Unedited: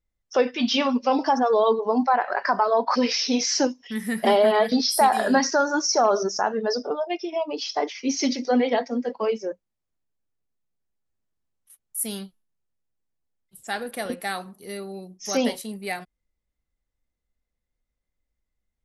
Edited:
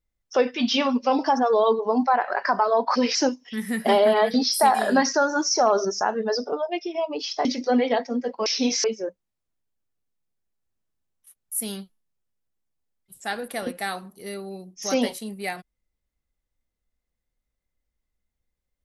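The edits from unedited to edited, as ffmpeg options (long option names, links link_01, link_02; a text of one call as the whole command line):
ffmpeg -i in.wav -filter_complex "[0:a]asplit=5[link_01][link_02][link_03][link_04][link_05];[link_01]atrim=end=3.152[link_06];[link_02]atrim=start=3.528:end=7.832[link_07];[link_03]atrim=start=8.258:end=9.272[link_08];[link_04]atrim=start=3.148:end=3.532[link_09];[link_05]atrim=start=9.268[link_10];[link_06][link_07]acrossfade=duration=0.004:curve1=hsin:curve2=hsin[link_11];[link_11][link_08]acrossfade=duration=0.004:curve1=hsin:curve2=hsin[link_12];[link_12][link_09]acrossfade=duration=0.004:curve1=hsin:curve2=hsin[link_13];[link_13][link_10]acrossfade=duration=0.004:curve1=hsin:curve2=hsin" out.wav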